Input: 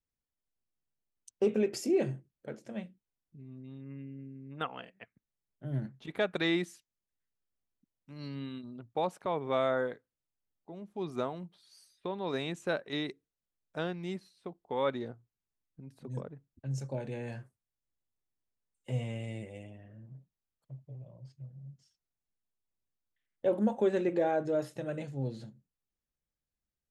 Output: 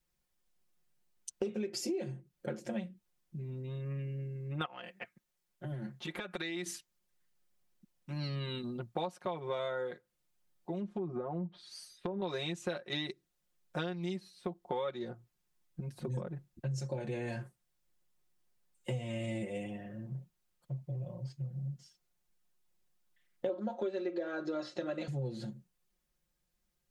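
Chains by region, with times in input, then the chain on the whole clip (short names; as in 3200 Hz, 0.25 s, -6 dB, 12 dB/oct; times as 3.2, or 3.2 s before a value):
4.65–6.66 low shelf 270 Hz -8.5 dB + compressor, threshold -45 dBFS
10.79–12.22 treble ducked by the level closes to 880 Hz, closed at -35 dBFS + compressor, threshold -37 dBFS
23.49–25.08 speaker cabinet 240–6200 Hz, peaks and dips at 240 Hz +5 dB, 550 Hz +6 dB, 1300 Hz +8 dB, 4200 Hz +7 dB + comb 3 ms, depth 36%
whole clip: comb 5.6 ms, depth 92%; dynamic EQ 4700 Hz, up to +6 dB, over -54 dBFS, Q 1.2; compressor 8:1, threshold -41 dBFS; gain +7 dB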